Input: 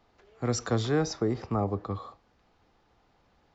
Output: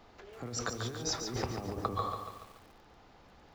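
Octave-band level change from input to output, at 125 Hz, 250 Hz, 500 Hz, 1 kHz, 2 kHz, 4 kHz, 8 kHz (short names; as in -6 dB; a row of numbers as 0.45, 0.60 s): -9.0 dB, -10.5 dB, -9.0 dB, -1.0 dB, -3.0 dB, +0.5 dB, n/a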